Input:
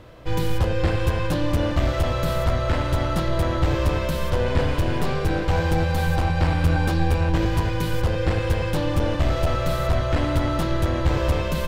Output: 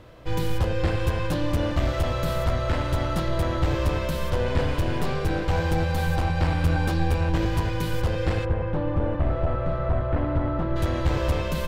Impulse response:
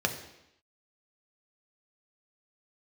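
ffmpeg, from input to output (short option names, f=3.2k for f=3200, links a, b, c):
-filter_complex "[0:a]asplit=3[a][b][c];[a]afade=t=out:st=8.44:d=0.02[d];[b]lowpass=1.4k,afade=t=in:st=8.44:d=0.02,afade=t=out:st=10.75:d=0.02[e];[c]afade=t=in:st=10.75:d=0.02[f];[d][e][f]amix=inputs=3:normalize=0,volume=-2.5dB"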